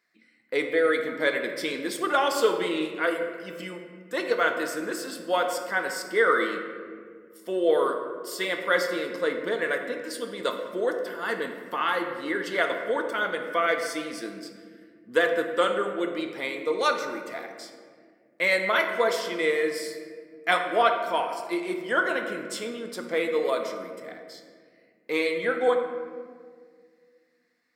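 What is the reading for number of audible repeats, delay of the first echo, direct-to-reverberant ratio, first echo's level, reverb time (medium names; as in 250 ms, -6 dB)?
no echo, no echo, 4.0 dB, no echo, 2.0 s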